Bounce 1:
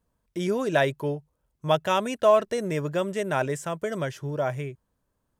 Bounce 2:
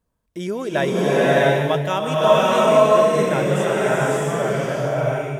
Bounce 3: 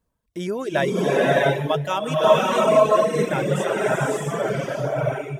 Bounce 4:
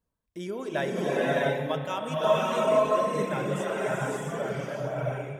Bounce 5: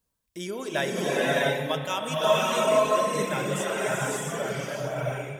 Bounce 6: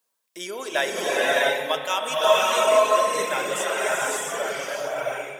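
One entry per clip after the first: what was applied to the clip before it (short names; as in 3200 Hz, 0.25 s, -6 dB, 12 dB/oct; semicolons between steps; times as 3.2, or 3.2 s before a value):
bloom reverb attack 0.66 s, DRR -8 dB
reverb removal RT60 1.2 s
spring tank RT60 2.5 s, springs 31 ms, chirp 45 ms, DRR 6.5 dB; gain -8 dB
high shelf 2400 Hz +11.5 dB
HPF 500 Hz 12 dB/oct; gain +5 dB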